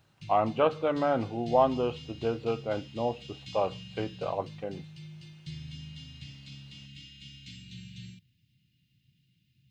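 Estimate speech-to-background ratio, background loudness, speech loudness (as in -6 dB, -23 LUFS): 15.5 dB, -45.5 LUFS, -30.0 LUFS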